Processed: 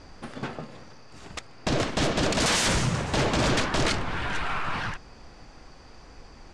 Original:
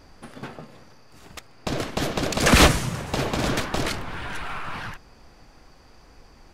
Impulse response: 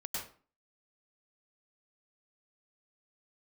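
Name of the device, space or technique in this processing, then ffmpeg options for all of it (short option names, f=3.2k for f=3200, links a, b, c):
synthesiser wavefolder: -af "aeval=exprs='0.0944*(abs(mod(val(0)/0.0944+3,4)-2)-1)':c=same,lowpass=f=8.5k:w=0.5412,lowpass=f=8.5k:w=1.3066,volume=3dB"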